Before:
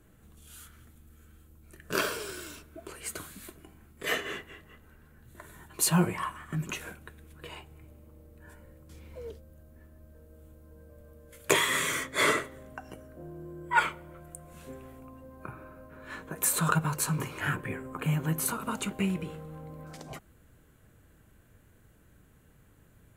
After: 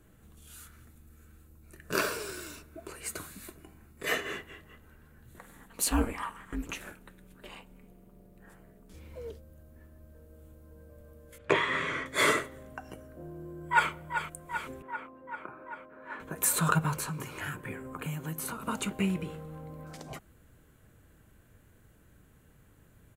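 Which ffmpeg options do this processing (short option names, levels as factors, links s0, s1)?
-filter_complex "[0:a]asettb=1/sr,asplit=3[s0][s1][s2];[s0]atrim=end=0.534[s3];[s1]atrim=start=0.53:end=4.4,asetpts=PTS-STARTPTS,afade=t=in:d=0.004:c=qsin,afade=t=out:st=3.866:d=0.004:c=qsin,bandreject=f=3200:w=8.7[s4];[s2]atrim=start=4.396[s5];[s3][s4]acrossfade=d=0.004:c1=hsin:c2=qsin[s6];[s6][s5]acrossfade=d=0.004:c1=qsin:c2=hsin,asettb=1/sr,asplit=3[s7][s8][s9];[s7]atrim=end=5.384[s10];[s8]atrim=start=5.38:end=8.94,asetpts=PTS-STARTPTS,afade=t=in:d=0.004:c=qsin,afade=t=out:st=3.556:d=0.004:c=qsin,aeval=exprs='val(0)*sin(2*PI*110*n/s)':c=same[s11];[s9]atrim=start=8.936[s12];[s10][s11]acrossfade=d=0.004:c1=hsin:c2=qsin[s13];[s13][s12]acrossfade=d=0.004:c1=qsin:c2=hsin,asettb=1/sr,asplit=3[s14][s15][s16];[s14]atrim=end=11.384[s17];[s15]atrim=start=11.38:end=12.06,asetpts=PTS-STARTPTS,afade=t=in:d=0.004:c=qsin,afade=t=out:st=0.676:d=0.004:c=qsin,lowpass=2400[s18];[s16]atrim=start=12.056[s19];[s17][s18]acrossfade=d=0.004:c1=hsin:c2=qsin[s20];[s20][s19]acrossfade=d=0.004:c1=qsin:c2=hsin,asplit=2[s21][s22];[s22]afade=t=in:st=13.21:d=0.01,afade=t=out:st=13.9:d=0.01,aecho=0:1:390|780|1170|1560|1950|2340|2730|3120|3510|3900|4290|4680:0.375837|0.281878|0.211409|0.158556|0.118917|0.089188|0.066891|0.0501682|0.0376262|0.0282196|0.0211647|0.0158735[s23];[s21][s23]amix=inputs=2:normalize=0,asettb=1/sr,asplit=3[s24][s25][s26];[s24]atrim=end=14.824[s27];[s25]atrim=start=14.82:end=16.2,asetpts=PTS-STARTPTS,afade=t=in:d=0.004:c=qsin,afade=t=out:st=1.376:d=0.004:c=qsin,acrossover=split=230 2400:gain=0.1 1 0.112[s28][s29][s30];[s28][s29][s30]amix=inputs=3:normalize=0[s31];[s26]atrim=start=16.196[s32];[s27][s31]acrossfade=d=0.004:c1=hsin:c2=qsin[s33];[s33][s32]acrossfade=d=0.004:c1=qsin:c2=hsin,asettb=1/sr,asplit=3[s34][s35][s36];[s34]atrim=end=16.974[s37];[s35]atrim=start=16.97:end=18.68,asetpts=PTS-STARTPTS,afade=t=in:d=0.004:c=qsin,afade=t=out:st=1.706:d=0.004:c=qsin,acrossover=split=140|4000[s38][s39][s40];[s38]acompressor=threshold=0.00501:ratio=4[s41];[s39]acompressor=threshold=0.0141:ratio=4[s42];[s40]acompressor=threshold=0.0141:ratio=4[s43];[s41][s42][s43]amix=inputs=3:normalize=0[s44];[s36]atrim=start=18.676[s45];[s37][s44]acrossfade=d=0.004:c1=hsin:c2=qsin[s46];[s46][s45]acrossfade=d=0.004:c1=qsin:c2=hsin"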